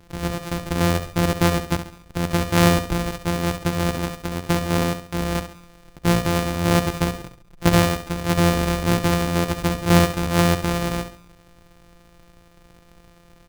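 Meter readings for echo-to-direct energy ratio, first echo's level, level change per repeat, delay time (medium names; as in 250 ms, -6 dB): -9.5 dB, -10.0 dB, -8.0 dB, 68 ms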